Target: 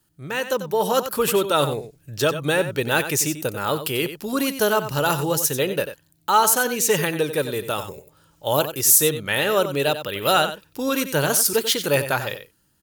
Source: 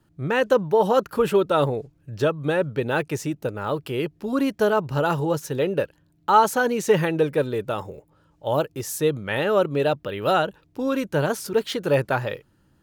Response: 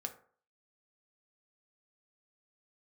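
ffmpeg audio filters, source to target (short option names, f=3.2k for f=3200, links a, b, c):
-af "dynaudnorm=f=150:g=9:m=11.5dB,aecho=1:1:92:0.282,crystalizer=i=6:c=0,volume=-8.5dB"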